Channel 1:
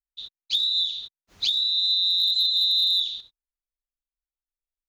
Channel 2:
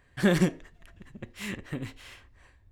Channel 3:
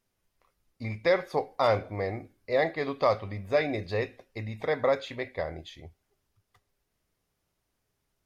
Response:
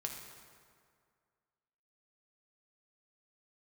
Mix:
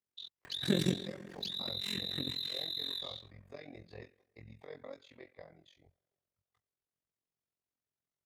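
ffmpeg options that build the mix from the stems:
-filter_complex "[0:a]acompressor=threshold=-25dB:ratio=6,aeval=exprs='0.178*sin(PI/2*1.41*val(0)/0.178)':channel_layout=same,volume=-12.5dB[link_01];[1:a]bass=frequency=250:gain=-9,treble=frequency=4000:gain=-4,acompressor=mode=upward:threshold=-43dB:ratio=2.5,adelay=450,volume=0dB,asplit=2[link_02][link_03];[link_03]volume=-4dB[link_04];[2:a]flanger=delay=17.5:depth=4:speed=1.8,volume=-12dB,asplit=2[link_05][link_06];[link_06]volume=-22.5dB[link_07];[3:a]atrim=start_sample=2205[link_08];[link_04][link_07]amix=inputs=2:normalize=0[link_09];[link_09][link_08]afir=irnorm=-1:irlink=0[link_10];[link_01][link_02][link_05][link_10]amix=inputs=4:normalize=0,highpass=84,tremolo=f=44:d=0.889,acrossover=split=390|3000[link_11][link_12][link_13];[link_12]acompressor=threshold=-51dB:ratio=3[link_14];[link_11][link_14][link_13]amix=inputs=3:normalize=0"

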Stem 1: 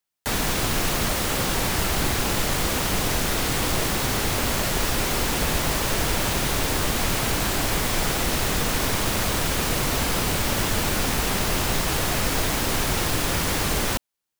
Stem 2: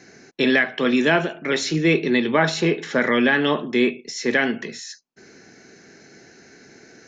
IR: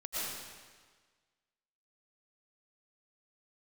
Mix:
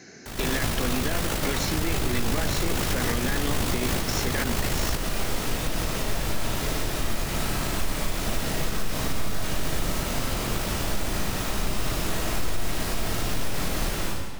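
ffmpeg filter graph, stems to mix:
-filter_complex "[0:a]lowshelf=frequency=250:gain=6,tremolo=f=53:d=0.571,volume=1dB,asplit=2[link_01][link_02];[link_02]volume=-8dB[link_03];[1:a]bass=frequency=250:gain=2,treble=frequency=4000:gain=4,acompressor=threshold=-21dB:ratio=10,volume=0dB,asplit=2[link_04][link_05];[link_05]apad=whole_len=634672[link_06];[link_01][link_06]sidechaingate=range=-33dB:threshold=-36dB:ratio=16:detection=peak[link_07];[2:a]atrim=start_sample=2205[link_08];[link_03][link_08]afir=irnorm=-1:irlink=0[link_09];[link_07][link_04][link_09]amix=inputs=3:normalize=0,alimiter=limit=-15dB:level=0:latency=1:release=115"

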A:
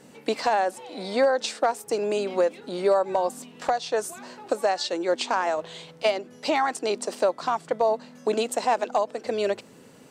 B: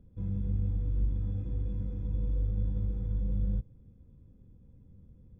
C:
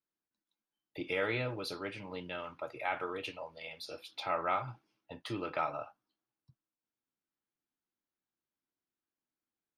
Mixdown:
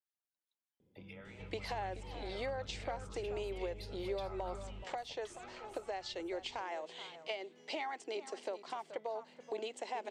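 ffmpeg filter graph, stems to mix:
ffmpeg -i stem1.wav -i stem2.wav -i stem3.wav -filter_complex "[0:a]adelay=1250,volume=-12dB,asplit=2[link_01][link_02];[link_02]volume=-18dB[link_03];[1:a]acompressor=threshold=-35dB:ratio=6,adelay=800,volume=-6dB,asplit=2[link_04][link_05];[link_05]volume=-4.5dB[link_06];[2:a]acompressor=threshold=-44dB:ratio=5,highpass=520,acrossover=split=1400[link_07][link_08];[link_07]aeval=exprs='val(0)*(1-0.7/2+0.7/2*cos(2*PI*5.1*n/s))':channel_layout=same[link_09];[link_08]aeval=exprs='val(0)*(1-0.7/2-0.7/2*cos(2*PI*5.1*n/s))':channel_layout=same[link_10];[link_09][link_10]amix=inputs=2:normalize=0,volume=-4dB,asplit=2[link_11][link_12];[link_12]volume=-13.5dB[link_13];[link_01][link_04]amix=inputs=2:normalize=0,highpass=220,equalizer=frequency=240:width_type=q:width=4:gain=-3,equalizer=frequency=380:width_type=q:width=4:gain=8,equalizer=frequency=820:width_type=q:width=4:gain=4,equalizer=frequency=1300:width_type=q:width=4:gain=-4,equalizer=frequency=2100:width_type=q:width=4:gain=9,equalizer=frequency=3100:width_type=q:width=4:gain=8,lowpass=frequency=7800:width=0.5412,lowpass=frequency=7800:width=1.3066,acompressor=threshold=-41dB:ratio=2.5,volume=0dB[link_14];[link_03][link_06][link_13]amix=inputs=3:normalize=0,aecho=0:1:428:1[link_15];[link_11][link_14][link_15]amix=inputs=3:normalize=0" out.wav

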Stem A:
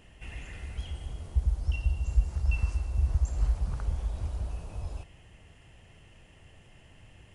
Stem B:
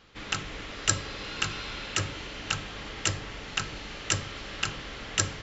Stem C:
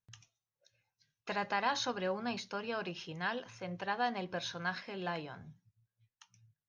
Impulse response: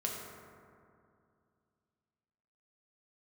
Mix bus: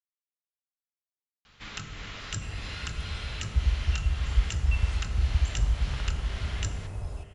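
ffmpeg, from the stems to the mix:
-filter_complex "[0:a]adelay=2200,volume=-1.5dB,asplit=2[link_01][link_02];[link_02]volume=-9.5dB[link_03];[1:a]equalizer=frequency=380:width=0.88:gain=-10.5,acrossover=split=360[link_04][link_05];[link_05]acompressor=threshold=-38dB:ratio=4[link_06];[link_04][link_06]amix=inputs=2:normalize=0,adelay=1450,volume=-3.5dB,asplit=2[link_07][link_08];[link_08]volume=-4dB[link_09];[3:a]atrim=start_sample=2205[link_10];[link_03][link_09]amix=inputs=2:normalize=0[link_11];[link_11][link_10]afir=irnorm=-1:irlink=0[link_12];[link_01][link_07][link_12]amix=inputs=3:normalize=0"

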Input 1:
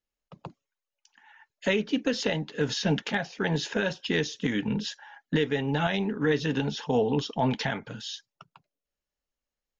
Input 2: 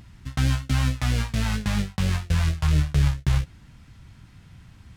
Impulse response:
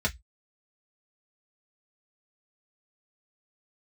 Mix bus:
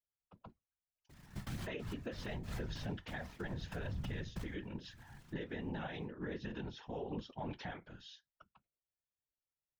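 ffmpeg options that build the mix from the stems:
-filter_complex "[0:a]lowpass=4300,volume=-8.5dB,asplit=3[link_01][link_02][link_03];[link_02]volume=-19dB[link_04];[1:a]acompressor=threshold=-25dB:ratio=3,acrusher=bits=2:mode=log:mix=0:aa=0.000001,adelay=1100,volume=-5dB,asplit=2[link_05][link_06];[link_06]volume=-23dB[link_07];[link_03]apad=whole_len=267564[link_08];[link_05][link_08]sidechaincompress=threshold=-52dB:ratio=12:attack=32:release=135[link_09];[2:a]atrim=start_sample=2205[link_10];[link_04][link_07]amix=inputs=2:normalize=0[link_11];[link_11][link_10]afir=irnorm=-1:irlink=0[link_12];[link_01][link_09][link_12]amix=inputs=3:normalize=0,afftfilt=real='hypot(re,im)*cos(2*PI*random(0))':imag='hypot(re,im)*sin(2*PI*random(1))':win_size=512:overlap=0.75,alimiter=level_in=8.5dB:limit=-24dB:level=0:latency=1:release=114,volume=-8.5dB"

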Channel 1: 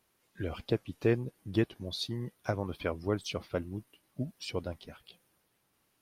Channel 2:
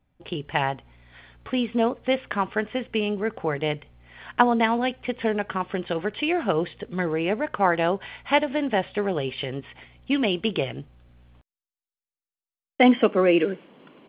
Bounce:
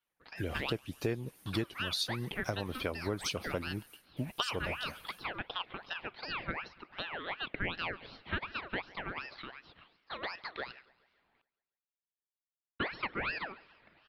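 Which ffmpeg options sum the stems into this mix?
ffmpeg -i stem1.wav -i stem2.wav -filter_complex "[0:a]agate=range=-33dB:threshold=-57dB:ratio=3:detection=peak,highshelf=frequency=3600:gain=11,volume=1.5dB[link_01];[1:a]acrossover=split=550 2000:gain=0.0891 1 0.2[link_02][link_03][link_04];[link_02][link_03][link_04]amix=inputs=3:normalize=0,aeval=exprs='val(0)*sin(2*PI*1500*n/s+1500*0.5/2.7*sin(2*PI*2.7*n/s))':channel_layout=same,volume=-4dB,asplit=2[link_05][link_06];[link_06]volume=-23.5dB,aecho=0:1:140|280|420|560|700|840|980|1120:1|0.52|0.27|0.141|0.0731|0.038|0.0198|0.0103[link_07];[link_01][link_05][link_07]amix=inputs=3:normalize=0,acompressor=threshold=-32dB:ratio=3" out.wav

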